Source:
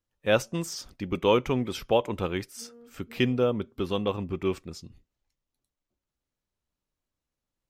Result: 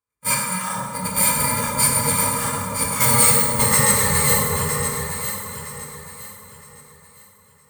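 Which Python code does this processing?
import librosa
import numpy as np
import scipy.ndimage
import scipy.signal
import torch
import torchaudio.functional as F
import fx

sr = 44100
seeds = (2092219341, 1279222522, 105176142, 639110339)

p1 = fx.bit_reversed(x, sr, seeds[0], block=128)
p2 = fx.doppler_pass(p1, sr, speed_mps=23, closest_m=14.0, pass_at_s=3.39)
p3 = scipy.signal.sosfilt(scipy.signal.butter(2, 42.0, 'highpass', fs=sr, output='sos'), p2)
p4 = fx.band_shelf(p3, sr, hz=1400.0, db=10.0, octaves=1.0)
p5 = fx.rider(p4, sr, range_db=4, speed_s=0.5)
p6 = p4 + (p5 * 10.0 ** (2.5 / 20.0))
p7 = fx.graphic_eq_15(p6, sr, hz=(400, 1000, 2500, 10000), db=(12, 7, 10, 7))
p8 = fx.formant_shift(p7, sr, semitones=-4)
p9 = np.clip(p8, -10.0 ** (-12.5 / 20.0), 10.0 ** (-12.5 / 20.0))
p10 = fx.leveller(p9, sr, passes=1)
p11 = fx.notch_comb(p10, sr, f0_hz=380.0)
p12 = p11 + fx.echo_alternate(p11, sr, ms=482, hz=1000.0, feedback_pct=54, wet_db=-3, dry=0)
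y = fx.rev_plate(p12, sr, seeds[1], rt60_s=2.0, hf_ratio=0.6, predelay_ms=0, drr_db=-2.5)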